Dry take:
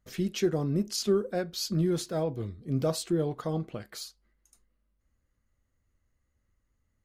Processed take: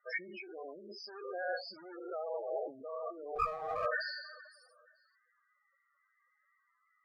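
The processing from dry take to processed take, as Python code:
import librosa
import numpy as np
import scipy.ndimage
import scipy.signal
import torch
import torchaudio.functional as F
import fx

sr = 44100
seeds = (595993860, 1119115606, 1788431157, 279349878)

y = fx.spec_trails(x, sr, decay_s=1.22)
y = fx.over_compress(y, sr, threshold_db=-37.0, ratio=-1.0)
y = scipy.signal.lfilter(np.full(12, 1.0 / 12), 1.0, y)
y = fx.echo_feedback(y, sr, ms=473, feedback_pct=37, wet_db=-23.0)
y = fx.sample_gate(y, sr, floor_db=-47.5, at=(1.0, 2.01))
y = fx.cheby_harmonics(y, sr, harmonics=(4,), levels_db=(-19,), full_scale_db=-19.5)
y = scipy.signal.sosfilt(scipy.signal.butter(2, 1000.0, 'highpass', fs=sr, output='sos'), y)
y = fx.spec_topn(y, sr, count=8)
y = fx.running_max(y, sr, window=5, at=(3.35, 3.86))
y = y * 10.0 ** (12.5 / 20.0)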